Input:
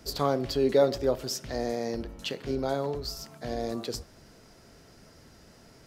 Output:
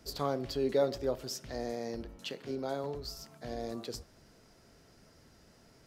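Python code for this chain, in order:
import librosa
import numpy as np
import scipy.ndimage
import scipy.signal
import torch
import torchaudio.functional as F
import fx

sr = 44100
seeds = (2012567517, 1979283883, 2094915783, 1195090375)

y = fx.highpass(x, sr, hz=130.0, slope=12, at=(2.18, 2.84))
y = y * librosa.db_to_amplitude(-6.5)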